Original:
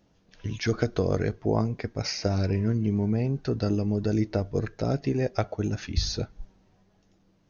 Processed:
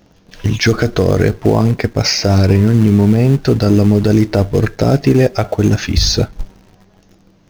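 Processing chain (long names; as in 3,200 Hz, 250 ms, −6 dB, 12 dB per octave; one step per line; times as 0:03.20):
in parallel at −10 dB: log-companded quantiser 4 bits
on the sum: boost into a limiter +15.5 dB
level −1 dB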